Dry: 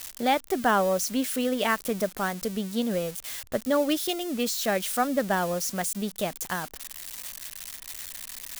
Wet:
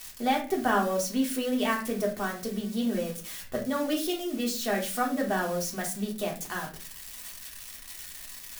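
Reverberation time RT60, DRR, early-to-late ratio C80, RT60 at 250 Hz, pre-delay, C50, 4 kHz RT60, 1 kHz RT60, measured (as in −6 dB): 0.40 s, −2.0 dB, 15.0 dB, 0.65 s, 3 ms, 9.5 dB, 0.30 s, 0.35 s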